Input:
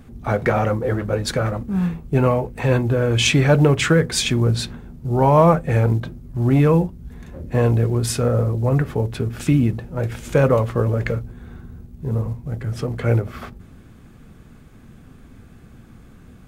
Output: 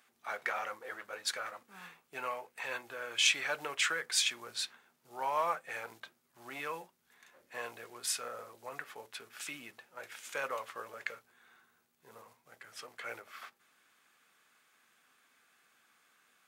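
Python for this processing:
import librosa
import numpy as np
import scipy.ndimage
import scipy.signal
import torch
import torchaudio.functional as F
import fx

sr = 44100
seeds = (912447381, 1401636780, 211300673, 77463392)

y = scipy.signal.sosfilt(scipy.signal.butter(2, 1300.0, 'highpass', fs=sr, output='sos'), x)
y = y * librosa.db_to_amplitude(-8.0)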